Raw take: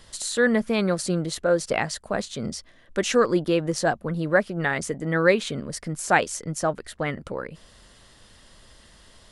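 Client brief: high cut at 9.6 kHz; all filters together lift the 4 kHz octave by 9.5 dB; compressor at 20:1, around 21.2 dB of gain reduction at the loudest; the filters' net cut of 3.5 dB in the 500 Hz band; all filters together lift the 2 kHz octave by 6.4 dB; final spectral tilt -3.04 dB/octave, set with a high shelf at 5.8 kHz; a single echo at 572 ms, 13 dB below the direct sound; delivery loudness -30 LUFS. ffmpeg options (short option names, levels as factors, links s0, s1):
-af "lowpass=9600,equalizer=f=500:t=o:g=-4.5,equalizer=f=2000:t=o:g=6,equalizer=f=4000:t=o:g=9,highshelf=f=5800:g=3,acompressor=threshold=0.0251:ratio=20,aecho=1:1:572:0.224,volume=2.24"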